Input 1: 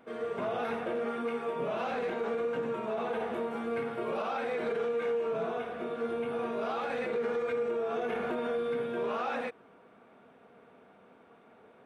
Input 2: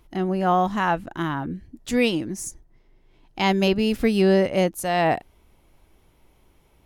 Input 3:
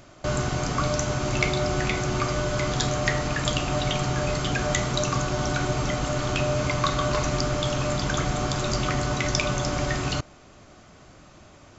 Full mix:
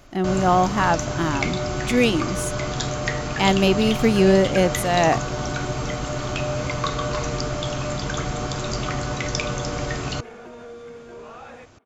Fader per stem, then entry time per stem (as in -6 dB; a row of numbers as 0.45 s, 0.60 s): -7.5 dB, +2.0 dB, -1.0 dB; 2.15 s, 0.00 s, 0.00 s